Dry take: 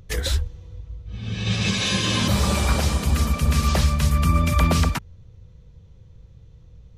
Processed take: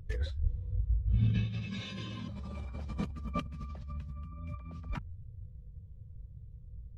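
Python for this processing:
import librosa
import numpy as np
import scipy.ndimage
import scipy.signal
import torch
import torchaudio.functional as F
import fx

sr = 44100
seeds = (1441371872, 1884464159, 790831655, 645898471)

y = fx.over_compress(x, sr, threshold_db=-30.0, ratio=-1.0)
y = fx.high_shelf(y, sr, hz=6200.0, db=-11.0)
y = fx.spectral_expand(y, sr, expansion=1.5)
y = y * 10.0 ** (-6.5 / 20.0)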